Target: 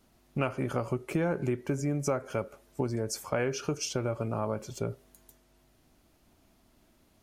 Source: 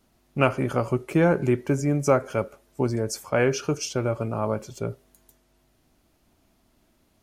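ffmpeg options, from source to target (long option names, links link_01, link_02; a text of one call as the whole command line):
ffmpeg -i in.wav -af "acompressor=threshold=-29dB:ratio=3" out.wav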